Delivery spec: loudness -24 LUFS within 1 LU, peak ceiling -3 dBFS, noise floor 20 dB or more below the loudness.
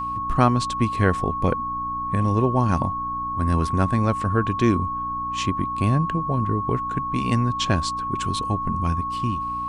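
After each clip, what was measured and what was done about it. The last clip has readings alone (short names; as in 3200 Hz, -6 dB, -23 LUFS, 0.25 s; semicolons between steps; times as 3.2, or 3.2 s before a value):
hum 60 Hz; harmonics up to 300 Hz; hum level -39 dBFS; steady tone 1100 Hz; tone level -25 dBFS; loudness -23.0 LUFS; peak -1.5 dBFS; loudness target -24.0 LUFS
-> de-hum 60 Hz, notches 5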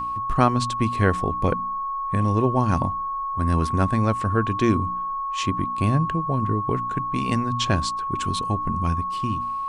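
hum none; steady tone 1100 Hz; tone level -25 dBFS
-> notch 1100 Hz, Q 30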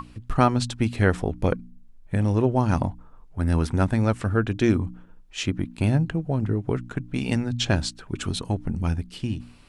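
steady tone none; loudness -25.0 LUFS; peak -2.5 dBFS; loudness target -24.0 LUFS
-> gain +1 dB; limiter -3 dBFS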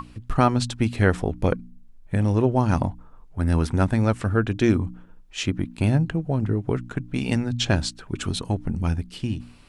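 loudness -24.0 LUFS; peak -3.0 dBFS; noise floor -48 dBFS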